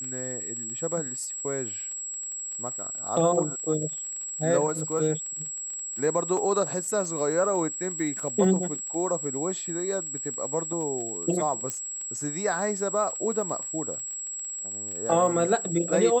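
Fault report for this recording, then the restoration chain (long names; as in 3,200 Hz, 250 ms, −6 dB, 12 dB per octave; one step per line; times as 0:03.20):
surface crackle 34 per second −35 dBFS
whistle 7,700 Hz −32 dBFS
0:11.70: click −14 dBFS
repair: click removal
notch filter 7,700 Hz, Q 30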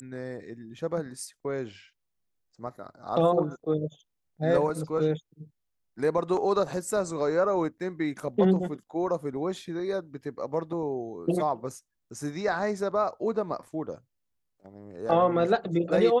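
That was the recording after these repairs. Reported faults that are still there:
none of them is left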